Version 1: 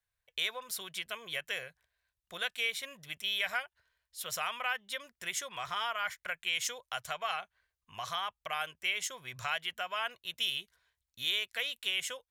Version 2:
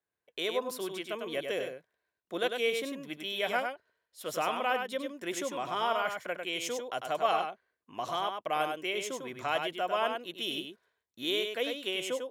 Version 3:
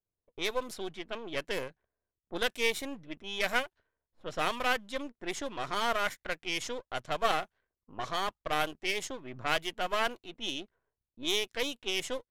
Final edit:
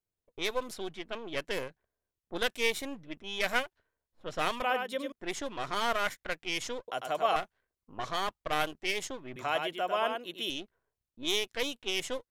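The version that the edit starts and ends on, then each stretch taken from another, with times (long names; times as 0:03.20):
3
0:04.62–0:05.12: punch in from 2
0:06.88–0:07.36: punch in from 2
0:09.36–0:10.50: punch in from 2
not used: 1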